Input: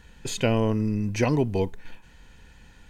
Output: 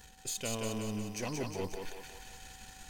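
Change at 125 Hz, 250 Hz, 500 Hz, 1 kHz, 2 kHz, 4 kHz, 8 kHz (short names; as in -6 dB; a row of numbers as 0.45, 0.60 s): -15.5, -13.5, -13.0, -10.0, -9.5, -5.5, 0.0 dB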